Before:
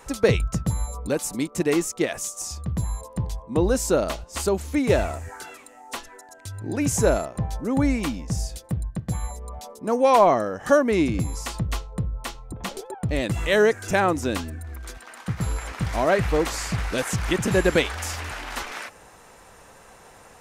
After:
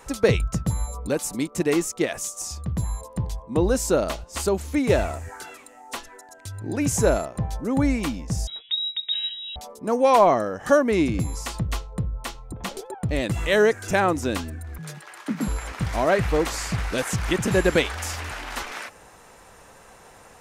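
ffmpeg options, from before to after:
-filter_complex "[0:a]asettb=1/sr,asplit=3[s0][s1][s2];[s0]atrim=end=8.474[s3];[s1]atrim=start=8.47:end=9.56,asetpts=PTS-STARTPTS,afade=t=in:d=0.004:c=qsin,afade=t=out:st=1.086:d=0.004:c=qsin,lowpass=f=3300:t=q:w=0.5098,lowpass=f=3300:t=q:w=0.6013,lowpass=f=3300:t=q:w=0.9,lowpass=f=3300:t=q:w=2.563,afreqshift=-3900[s4];[s2]atrim=start=9.556[s5];[s3][s4]acrossfade=d=0.004:c1=hsin:c2=qsin[s6];[s6][s5]acrossfade=d=0.004:c1=qsin:c2=hsin,asettb=1/sr,asplit=3[s7][s8][s9];[s7]atrim=end=14.784[s10];[s8]atrim=start=14.78:end=15.48,asetpts=PTS-STARTPTS,afade=t=in:d=0.004:c=qsin,afade=t=out:st=0.696:d=0.004:c=qsin,afreqshift=100[s11];[s9]atrim=start=15.476[s12];[s10][s11]acrossfade=d=0.004:c1=hsin:c2=qsin[s13];[s13][s12]acrossfade=d=0.004:c1=qsin:c2=hsin"

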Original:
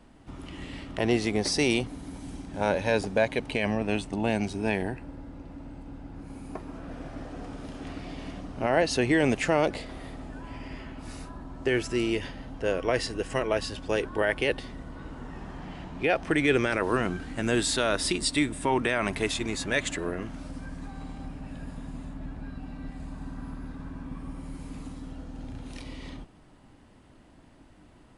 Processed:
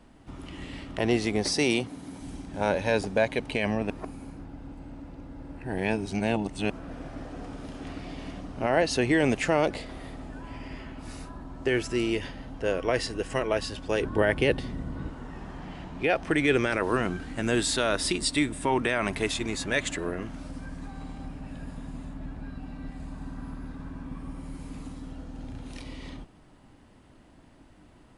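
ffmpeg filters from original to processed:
-filter_complex "[0:a]asettb=1/sr,asplit=3[s0][s1][s2];[s0]atrim=end=1.544[s3];[s1]atrim=start=1.54:end=2.21,asetpts=PTS-STARTPTS,afade=t=in:d=0.004:c=qsin,afade=t=out:st=0.666:d=0.004:c=qsin,highpass=110[s4];[s2]atrim=start=2.206[s5];[s3][s4]acrossfade=d=0.004:c1=hsin:c2=qsin[s6];[s6][s5]acrossfade=d=0.004:c1=qsin:c2=hsin,asettb=1/sr,asplit=3[s7][s8][s9];[s7]atrim=end=14.014[s10];[s8]atrim=start=14.01:end=15.1,asetpts=PTS-STARTPTS,afade=t=in:d=0.004:c=qsin,afade=t=out:st=1.086:d=0.004:c=qsin,equalizer=f=120:w=0.39:g=9[s11];[s9]atrim=start=15.096[s12];[s10][s11]acrossfade=d=0.004:c1=hsin:c2=qsin[s13];[s13][s12]acrossfade=d=0.004:c1=qsin:c2=hsin,asplit=3[s14][s15][s16];[s14]atrim=end=3.902[s17];[s15]atrim=start=3.898:end=6.702,asetpts=PTS-STARTPTS,areverse[s18];[s16]atrim=start=6.698[s19];[s17][s18]acrossfade=d=0.004:c1=hsin:c2=hsin[s20];[s20][s19]acrossfade=d=0.004:c1=hsin:c2=hsin"

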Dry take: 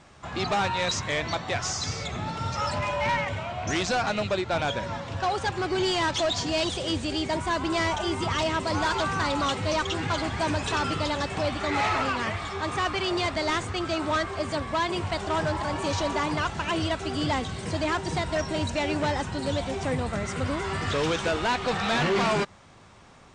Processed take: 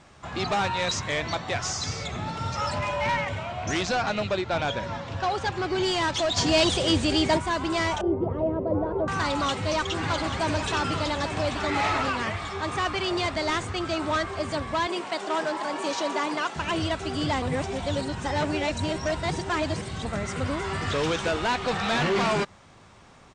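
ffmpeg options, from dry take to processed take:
-filter_complex "[0:a]asettb=1/sr,asplit=3[s0][s1][s2];[s0]atrim=end=3.814[s3];[s1]atrim=start=3.81:end=5.82,asetpts=PTS-STARTPTS,afade=t=in:d=0.004:c=qsin,afade=t=out:st=2.006:d=0.004:c=qsin,lowpass=7100[s4];[s2]atrim=start=5.816[s5];[s3][s4]acrossfade=d=0.004:c1=hsin:c2=qsin[s6];[s6][s5]acrossfade=d=0.004:c1=qsin:c2=hsin,asplit=3[s7][s8][s9];[s7]afade=t=out:st=6.36:d=0.02[s10];[s8]acontrast=44,afade=t=in:st=6.36:d=0.02,afade=t=out:st=7.37:d=0.02[s11];[s9]afade=t=in:st=7.37:d=0.02[s12];[s10][s11][s12]amix=inputs=3:normalize=0,asettb=1/sr,asplit=3[s13][s14][s15];[s13]atrim=end=8.014[s16];[s14]atrim=start=8.01:end=9.08,asetpts=PTS-STARTPTS,afade=t=in:d=0.004:c=qsin,afade=t=out:st=1.066:d=0.004:c=qsin,lowpass=f=500:t=q:w=2.9[s17];[s15]atrim=start=9.076[s18];[s16][s17]acrossfade=d=0.004:c1=hsin:c2=qsin[s19];[s19][s18]acrossfade=d=0.004:c1=qsin:c2=hsin,asplit=3[s20][s21][s22];[s20]afade=t=out:st=9.95:d=0.02[s23];[s21]aecho=1:1:836:0.355,afade=t=in:st=9.95:d=0.02,afade=t=out:st=12.22:d=0.02[s24];[s22]afade=t=in:st=12.22:d=0.02[s25];[s23][s24][s25]amix=inputs=3:normalize=0,asettb=1/sr,asplit=3[s26][s27][s28];[s26]atrim=end=14.874[s29];[s27]atrim=start=14.87:end=16.56,asetpts=PTS-STARTPTS,afade=t=in:d=0.004:c=qsin,afade=t=out:st=1.686:d=0.004:c=qsin,highpass=f=240:w=0.5412,highpass=f=240:w=1.3066[s30];[s28]atrim=start=16.556[s31];[s29][s30]acrossfade=d=0.004:c1=hsin:c2=qsin[s32];[s32][s31]acrossfade=d=0.004:c1=qsin:c2=hsin,asplit=3[s33][s34][s35];[s33]atrim=end=17.422[s36];[s34]atrim=start=17.418:end=20.052,asetpts=PTS-STARTPTS,areverse[s37];[s35]atrim=start=20.048[s38];[s36][s37]acrossfade=d=0.004:c1=hsin:c2=hsin[s39];[s39][s38]acrossfade=d=0.004:c1=hsin:c2=hsin"

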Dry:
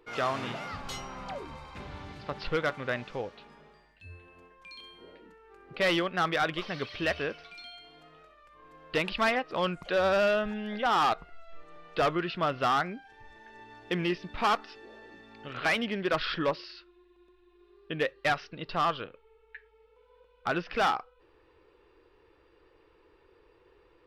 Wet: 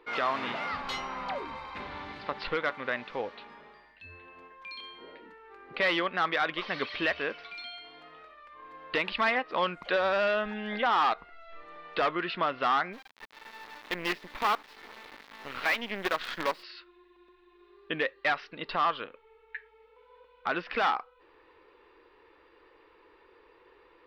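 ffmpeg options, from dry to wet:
-filter_complex "[0:a]asplit=3[s0][s1][s2];[s0]afade=t=out:st=12.92:d=0.02[s3];[s1]acrusher=bits=5:dc=4:mix=0:aa=0.000001,afade=t=in:st=12.92:d=0.02,afade=t=out:st=16.62:d=0.02[s4];[s2]afade=t=in:st=16.62:d=0.02[s5];[s3][s4][s5]amix=inputs=3:normalize=0,equalizer=f=125:t=o:w=1:g=-4,equalizer=f=250:t=o:w=1:g=7,equalizer=f=500:t=o:w=1:g=5,equalizer=f=1000:t=o:w=1:g=10,equalizer=f=2000:t=o:w=1:g=10,equalizer=f=4000:t=o:w=1:g=9,equalizer=f=8000:t=o:w=1:g=-5,alimiter=limit=0.266:level=0:latency=1:release=413,volume=0.501"

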